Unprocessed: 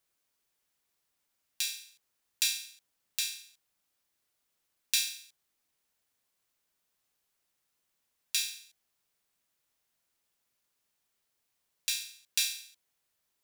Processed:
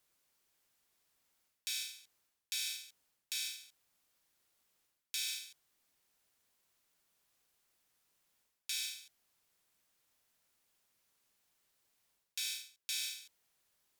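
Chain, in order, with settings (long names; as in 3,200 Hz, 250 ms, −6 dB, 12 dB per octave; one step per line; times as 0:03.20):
reversed playback
downward compressor 6 to 1, threshold −39 dBFS, peak gain reduction 16 dB
reversed playback
wrong playback speed 25 fps video run at 24 fps
level +2.5 dB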